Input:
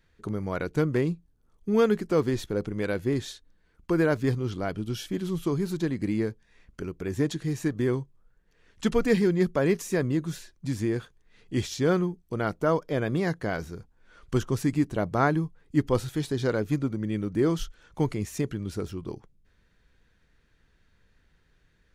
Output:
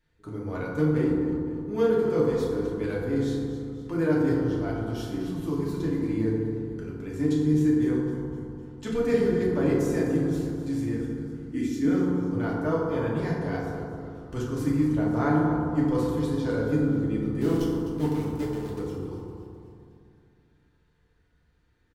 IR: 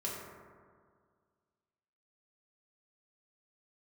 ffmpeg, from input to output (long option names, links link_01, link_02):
-filter_complex "[0:a]asettb=1/sr,asplit=3[link_01][link_02][link_03];[link_01]atrim=end=10.944[link_04];[link_02]atrim=start=10.94:end=11.96,asetpts=PTS-STARTPTS,afade=type=in:duration=0.004:curve=qsin,afade=type=out:start_time=1.016:duration=0.004:curve=qsin,equalizer=frequency=125:width_type=o:width=1:gain=-11,equalizer=frequency=250:width_type=o:width=1:gain=11,equalizer=frequency=500:width_type=o:width=1:gain=-8,equalizer=frequency=1000:width_type=o:width=1:gain=-7,equalizer=frequency=2000:width_type=o:width=1:gain=4,equalizer=frequency=4000:width_type=o:width=1:gain=-9[link_05];[link_03]atrim=start=11.956[link_06];[link_04][link_05]acrossfade=duration=0.004:curve1=hsin:curve2=qsin[link_07];[link_07][link_06]acrossfade=duration=0.004:curve1=qsin:curve2=hsin,asplit=3[link_08][link_09][link_10];[link_08]afade=type=out:start_time=17.4:duration=0.02[link_11];[link_09]aeval=exprs='val(0)*gte(abs(val(0)),0.0355)':channel_layout=same,afade=type=in:start_time=17.4:duration=0.02,afade=type=out:start_time=18.78:duration=0.02[link_12];[link_10]afade=type=in:start_time=18.78:duration=0.02[link_13];[link_11][link_12][link_13]amix=inputs=3:normalize=0,asplit=6[link_14][link_15][link_16][link_17][link_18][link_19];[link_15]adelay=255,afreqshift=-78,volume=-12.5dB[link_20];[link_16]adelay=510,afreqshift=-156,volume=-18.2dB[link_21];[link_17]adelay=765,afreqshift=-234,volume=-23.9dB[link_22];[link_18]adelay=1020,afreqshift=-312,volume=-29.5dB[link_23];[link_19]adelay=1275,afreqshift=-390,volume=-35.2dB[link_24];[link_14][link_20][link_21][link_22][link_23][link_24]amix=inputs=6:normalize=0[link_25];[1:a]atrim=start_sample=2205,asetrate=33075,aresample=44100[link_26];[link_25][link_26]afir=irnorm=-1:irlink=0,volume=-7dB"